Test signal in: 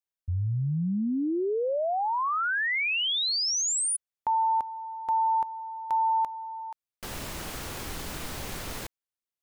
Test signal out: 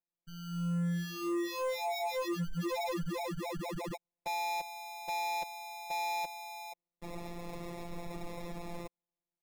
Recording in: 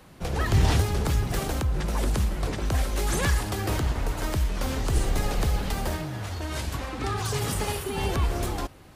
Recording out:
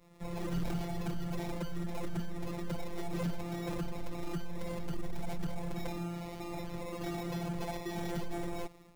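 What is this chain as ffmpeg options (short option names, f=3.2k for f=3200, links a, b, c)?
-filter_complex "[0:a]acrossover=split=2700[a][b];[b]acompressor=threshold=-33dB:ratio=4:attack=1:release=60[c];[a][c]amix=inputs=2:normalize=0,acrusher=samples=29:mix=1:aa=0.000001,dynaudnorm=f=120:g=5:m=5.5dB,afftfilt=real='hypot(re,im)*cos(PI*b)':imag='0':win_size=1024:overlap=0.75,asoftclip=type=tanh:threshold=-20.5dB,volume=-6.5dB"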